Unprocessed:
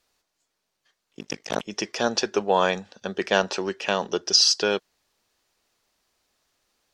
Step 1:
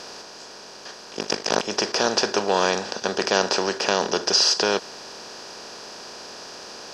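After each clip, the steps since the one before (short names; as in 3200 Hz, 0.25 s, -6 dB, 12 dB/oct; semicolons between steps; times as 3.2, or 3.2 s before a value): per-bin compression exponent 0.4; gain -3.5 dB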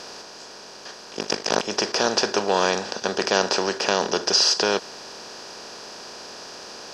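nothing audible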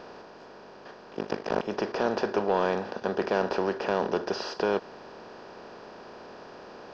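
soft clip -10 dBFS, distortion -17 dB; tape spacing loss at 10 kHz 41 dB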